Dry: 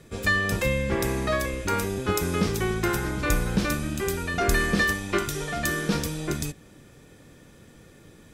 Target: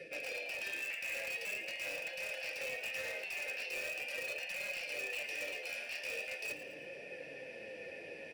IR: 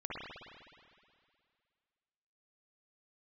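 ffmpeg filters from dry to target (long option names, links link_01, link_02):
-filter_complex "[0:a]bandreject=frequency=60:width_type=h:width=6,bandreject=frequency=120:width_type=h:width=6,bandreject=frequency=180:width_type=h:width=6,bandreject=frequency=240:width_type=h:width=6,bandreject=frequency=300:width_type=h:width=6,bandreject=frequency=360:width_type=h:width=6,bandreject=frequency=420:width_type=h:width=6,bandreject=frequency=480:width_type=h:width=6,afftfilt=real='re*lt(hypot(re,im),0.0708)':imag='im*lt(hypot(re,im),0.0708)':win_size=1024:overlap=0.75,superequalizer=12b=3.55:14b=3.16:16b=2.24,areverse,acompressor=threshold=-38dB:ratio=8,areverse,asplit=3[link_01][link_02][link_03];[link_01]bandpass=frequency=530:width_type=q:width=8,volume=0dB[link_04];[link_02]bandpass=frequency=1840:width_type=q:width=8,volume=-6dB[link_05];[link_03]bandpass=frequency=2480:width_type=q:width=8,volume=-9dB[link_06];[link_04][link_05][link_06]amix=inputs=3:normalize=0,asplit=2[link_07][link_08];[link_08]aeval=exprs='(mod(237*val(0)+1,2)-1)/237':channel_layout=same,volume=-6dB[link_09];[link_07][link_09]amix=inputs=2:normalize=0,flanger=delay=4.8:depth=8.2:regen=52:speed=0.42:shape=triangular,asplit=5[link_10][link_11][link_12][link_13][link_14];[link_11]adelay=111,afreqshift=140,volume=-13dB[link_15];[link_12]adelay=222,afreqshift=280,volume=-20.3dB[link_16];[link_13]adelay=333,afreqshift=420,volume=-27.7dB[link_17];[link_14]adelay=444,afreqshift=560,volume=-35dB[link_18];[link_10][link_15][link_16][link_17][link_18]amix=inputs=5:normalize=0,volume=14.5dB"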